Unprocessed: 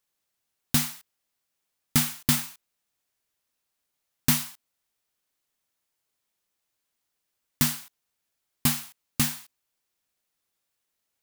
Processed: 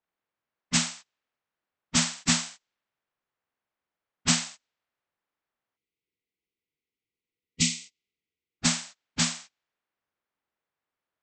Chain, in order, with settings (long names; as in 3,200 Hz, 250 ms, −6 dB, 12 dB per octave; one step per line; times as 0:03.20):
partials spread apart or drawn together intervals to 78%
gain on a spectral selection 0:05.77–0:08.60, 500–1,900 Hz −21 dB
low-pass that shuts in the quiet parts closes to 1,600 Hz, open at −26.5 dBFS